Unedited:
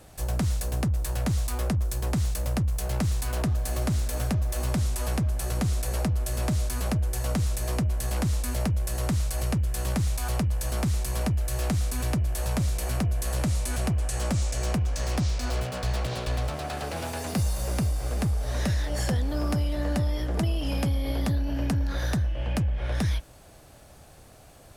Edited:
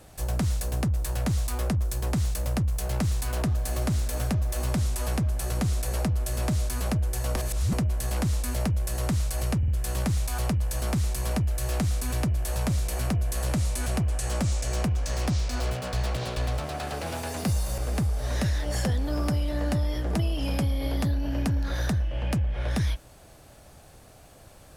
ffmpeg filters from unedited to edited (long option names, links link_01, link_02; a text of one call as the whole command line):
ffmpeg -i in.wav -filter_complex "[0:a]asplit=6[link_01][link_02][link_03][link_04][link_05][link_06];[link_01]atrim=end=7.362[link_07];[link_02]atrim=start=7.358:end=7.732,asetpts=PTS-STARTPTS,areverse[link_08];[link_03]atrim=start=7.728:end=9.632[link_09];[link_04]atrim=start=9.578:end=9.632[link_10];[link_05]atrim=start=9.578:end=17.682[link_11];[link_06]atrim=start=18.018[link_12];[link_07][link_08]acrossfade=duration=0.004:curve1=hsin:curve2=hsin[link_13];[link_13][link_09]acrossfade=duration=0.004:curve1=hsin:curve2=hsin[link_14];[link_14][link_10]acrossfade=duration=0.004:curve1=hsin:curve2=hsin[link_15];[link_15][link_11]acrossfade=duration=0.004:curve1=hsin:curve2=hsin[link_16];[link_16][link_12]acrossfade=duration=0.004:curve1=hsin:curve2=hsin" out.wav